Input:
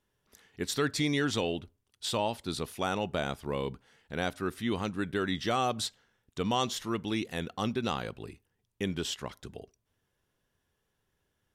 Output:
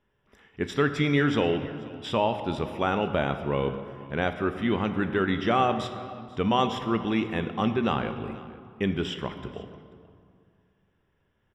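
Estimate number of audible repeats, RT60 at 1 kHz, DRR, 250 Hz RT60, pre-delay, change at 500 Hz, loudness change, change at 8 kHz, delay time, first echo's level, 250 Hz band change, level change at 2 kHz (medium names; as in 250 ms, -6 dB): 1, 2.3 s, 8.0 dB, 2.5 s, 5 ms, +6.5 dB, +5.5 dB, under -10 dB, 487 ms, -21.0 dB, +6.5 dB, +5.5 dB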